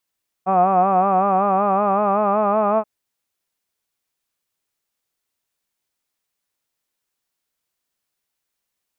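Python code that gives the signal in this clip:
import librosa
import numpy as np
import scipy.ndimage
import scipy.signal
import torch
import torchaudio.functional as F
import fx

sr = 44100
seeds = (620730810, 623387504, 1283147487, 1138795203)

y = fx.formant_vowel(sr, seeds[0], length_s=2.38, hz=184.0, glide_st=2.5, vibrato_hz=5.3, vibrato_st=0.75, f1_hz=710.0, f2_hz=1200.0, f3_hz=2500.0)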